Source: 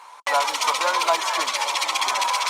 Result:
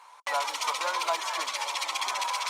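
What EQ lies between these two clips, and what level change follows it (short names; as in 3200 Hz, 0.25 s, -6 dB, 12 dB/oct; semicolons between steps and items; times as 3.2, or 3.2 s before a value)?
low shelf 200 Hz -11.5 dB; -7.5 dB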